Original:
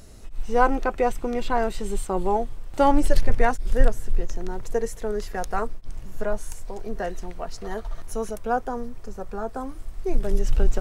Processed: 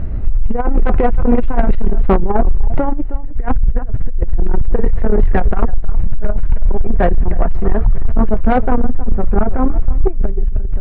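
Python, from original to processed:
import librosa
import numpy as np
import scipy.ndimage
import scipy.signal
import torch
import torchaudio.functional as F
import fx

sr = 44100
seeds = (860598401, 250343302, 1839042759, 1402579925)

p1 = scipy.signal.sosfilt(scipy.signal.butter(4, 2200.0, 'lowpass', fs=sr, output='sos'), x)
p2 = fx.low_shelf(p1, sr, hz=140.0, db=7.5)
p3 = fx.notch(p2, sr, hz=450.0, q=12.0)
p4 = fx.over_compress(p3, sr, threshold_db=-21.0, ratio=-1.0)
p5 = fx.low_shelf(p4, sr, hz=340.0, db=8.5)
p6 = p5 + fx.echo_single(p5, sr, ms=315, db=-16.0, dry=0)
p7 = 10.0 ** (-11.5 / 20.0) * np.tanh(p6 / 10.0 ** (-11.5 / 20.0))
p8 = fx.tremolo_shape(p7, sr, shape='triangle', hz=7.7, depth_pct=35)
y = F.gain(torch.from_numpy(p8), 8.5).numpy()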